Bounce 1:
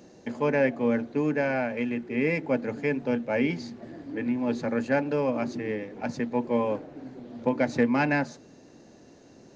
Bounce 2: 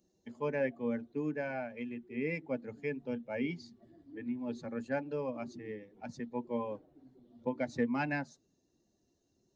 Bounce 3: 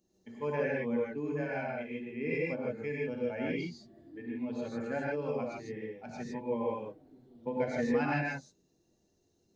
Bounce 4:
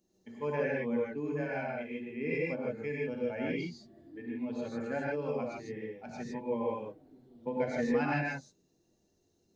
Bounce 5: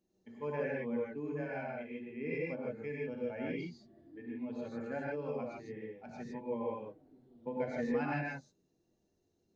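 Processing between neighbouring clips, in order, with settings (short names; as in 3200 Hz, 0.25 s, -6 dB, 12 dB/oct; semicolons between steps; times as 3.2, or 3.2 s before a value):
per-bin expansion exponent 1.5; gain -7.5 dB
non-linear reverb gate 0.18 s rising, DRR -4.5 dB; gain -2.5 dB
notches 60/120 Hz
high shelf 4500 Hz -8.5 dB; gain -4 dB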